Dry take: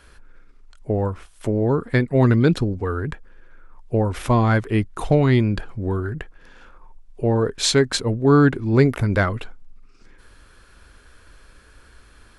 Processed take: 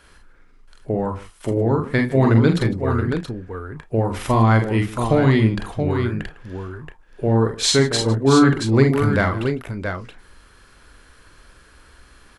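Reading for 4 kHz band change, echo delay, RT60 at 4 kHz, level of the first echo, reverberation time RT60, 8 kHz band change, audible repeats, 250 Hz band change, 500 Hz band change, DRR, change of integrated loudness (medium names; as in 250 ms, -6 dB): +3.0 dB, 45 ms, no reverb, -3.0 dB, no reverb, +2.5 dB, 5, +2.0 dB, +1.0 dB, no reverb, +1.0 dB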